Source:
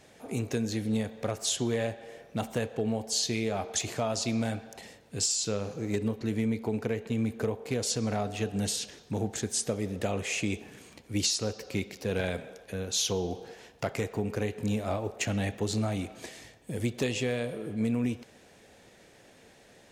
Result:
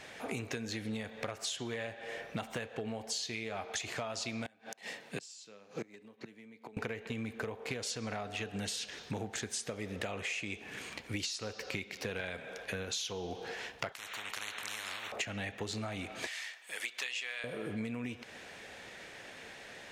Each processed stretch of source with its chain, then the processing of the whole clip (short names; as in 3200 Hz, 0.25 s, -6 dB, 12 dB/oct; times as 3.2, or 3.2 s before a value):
4.46–6.77 notch 1400 Hz, Q 16 + flipped gate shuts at -25 dBFS, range -27 dB + HPF 150 Hz 24 dB/oct
13.92–15.12 tone controls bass -13 dB, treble -9 dB + notch 4800 Hz, Q 5.7 + spectral compressor 10:1
16.27–17.44 HPF 1200 Hz + hard clip -24.5 dBFS
whole clip: bell 2000 Hz +12 dB 2.8 oct; compressor 12:1, threshold -35 dBFS